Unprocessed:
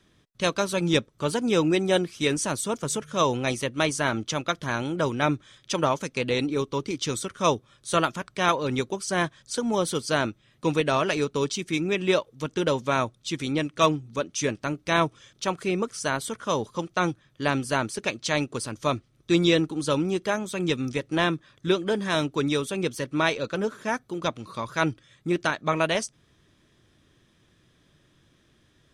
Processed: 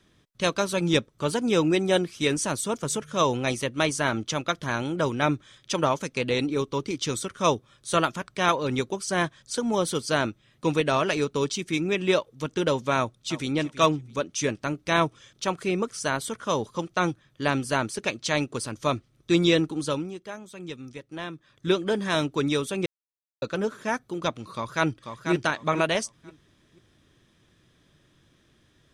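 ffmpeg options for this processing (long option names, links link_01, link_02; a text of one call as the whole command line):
ffmpeg -i in.wav -filter_complex "[0:a]asplit=2[link_01][link_02];[link_02]afade=type=in:start_time=12.97:duration=0.01,afade=type=out:start_time=13.51:duration=0.01,aecho=0:1:330|660:0.177828|0.0355656[link_03];[link_01][link_03]amix=inputs=2:normalize=0,asplit=2[link_04][link_05];[link_05]afade=type=in:start_time=24.53:duration=0.01,afade=type=out:start_time=25.31:duration=0.01,aecho=0:1:490|980|1470:0.473151|0.118288|0.029572[link_06];[link_04][link_06]amix=inputs=2:normalize=0,asplit=5[link_07][link_08][link_09][link_10][link_11];[link_07]atrim=end=20.14,asetpts=PTS-STARTPTS,afade=type=out:start_time=19.77:duration=0.37:silence=0.251189[link_12];[link_08]atrim=start=20.14:end=21.33,asetpts=PTS-STARTPTS,volume=-12dB[link_13];[link_09]atrim=start=21.33:end=22.86,asetpts=PTS-STARTPTS,afade=type=in:duration=0.37:silence=0.251189,afade=type=out:start_time=1.526:duration=0.004:curve=hsin[link_14];[link_10]atrim=start=22.86:end=23.42,asetpts=PTS-STARTPTS,volume=0[link_15];[link_11]atrim=start=23.42,asetpts=PTS-STARTPTS,afade=type=in:duration=0.004:curve=hsin[link_16];[link_12][link_13][link_14][link_15][link_16]concat=n=5:v=0:a=1" out.wav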